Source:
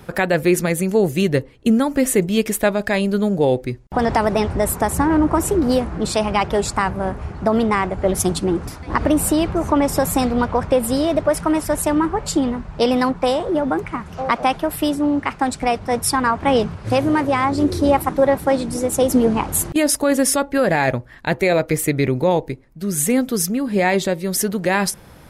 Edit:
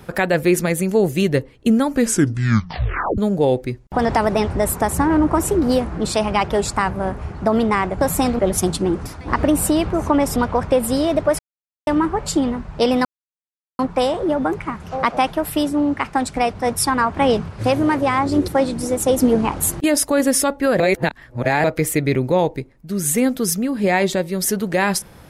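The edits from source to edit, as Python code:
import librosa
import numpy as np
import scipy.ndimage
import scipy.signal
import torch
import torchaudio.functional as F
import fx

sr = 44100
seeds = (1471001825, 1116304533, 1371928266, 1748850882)

y = fx.edit(x, sr, fx.tape_stop(start_s=1.92, length_s=1.26),
    fx.move(start_s=9.98, length_s=0.38, to_s=8.01),
    fx.silence(start_s=11.39, length_s=0.48),
    fx.insert_silence(at_s=13.05, length_s=0.74),
    fx.cut(start_s=17.74, length_s=0.66),
    fx.reverse_span(start_s=20.72, length_s=0.84), tone=tone)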